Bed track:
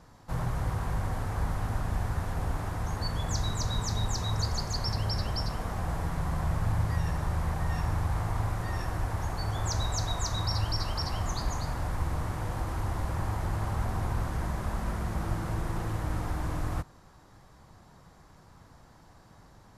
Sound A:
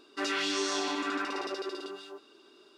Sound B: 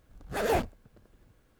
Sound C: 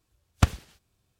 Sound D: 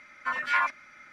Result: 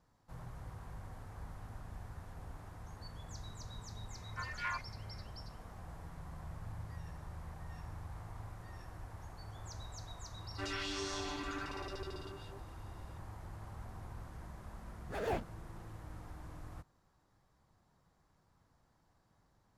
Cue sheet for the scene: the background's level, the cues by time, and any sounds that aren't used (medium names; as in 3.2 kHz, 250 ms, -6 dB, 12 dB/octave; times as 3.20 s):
bed track -17.5 dB
4.11 s: add D -14 dB
10.41 s: add A -9.5 dB
14.78 s: add B -9.5 dB + treble shelf 6.3 kHz -10 dB
not used: C